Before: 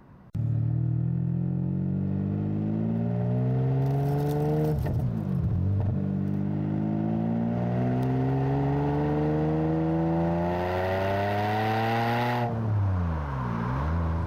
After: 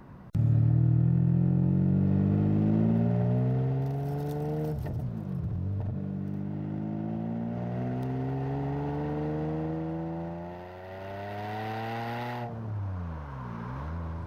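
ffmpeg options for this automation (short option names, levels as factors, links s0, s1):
-af "volume=3.76,afade=t=out:st=2.79:d=1.15:silence=0.354813,afade=t=out:st=9.58:d=1.2:silence=0.281838,afade=t=in:st=10.78:d=0.78:silence=0.375837"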